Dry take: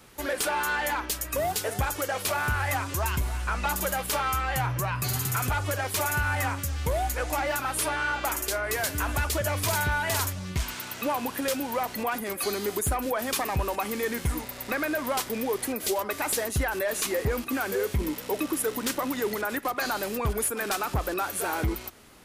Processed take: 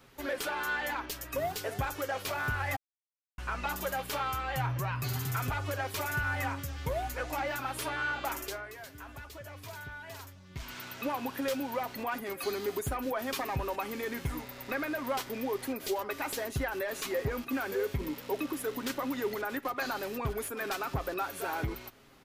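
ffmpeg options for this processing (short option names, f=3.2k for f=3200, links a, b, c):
-filter_complex "[0:a]asplit=5[a][b][c][d][e];[a]atrim=end=2.76,asetpts=PTS-STARTPTS,afade=t=out:st=2.756:d=0.004:c=hsin[f];[b]atrim=start=2.76:end=3.38,asetpts=PTS-STARTPTS,volume=0[g];[c]atrim=start=3.38:end=8.72,asetpts=PTS-STARTPTS,afade=t=in:d=0.004:c=hsin,afade=t=out:st=5.05:d=0.29:silence=0.251189[h];[d]atrim=start=8.72:end=10.49,asetpts=PTS-STARTPTS,volume=-12dB[i];[e]atrim=start=10.49,asetpts=PTS-STARTPTS,afade=t=in:d=0.29:silence=0.251189[j];[f][g][h][i][j]concat=n=5:v=0:a=1,equalizer=f=9.5k:w=0.95:g=-9,aecho=1:1:7.4:0.38,volume=-5.5dB"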